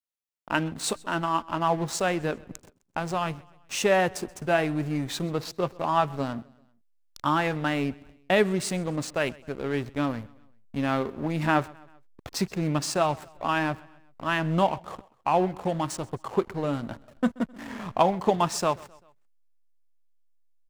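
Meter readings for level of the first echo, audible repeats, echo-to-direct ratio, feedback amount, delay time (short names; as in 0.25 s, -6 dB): -23.5 dB, 2, -22.5 dB, 51%, 0.13 s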